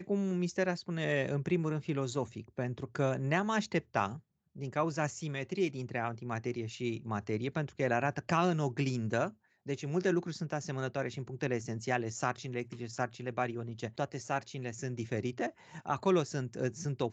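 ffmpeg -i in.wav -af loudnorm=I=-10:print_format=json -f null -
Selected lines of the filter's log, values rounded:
"input_i" : "-34.8",
"input_tp" : "-14.6",
"input_lra" : "3.1",
"input_thresh" : "-44.9",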